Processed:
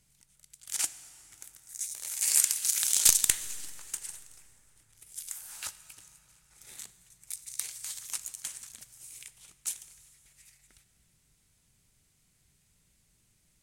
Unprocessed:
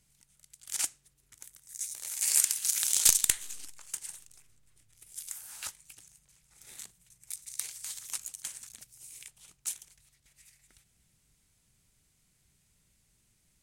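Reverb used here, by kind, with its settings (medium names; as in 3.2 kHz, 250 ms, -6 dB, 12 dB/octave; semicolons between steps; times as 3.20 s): plate-style reverb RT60 4 s, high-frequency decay 0.6×, DRR 13 dB; trim +1 dB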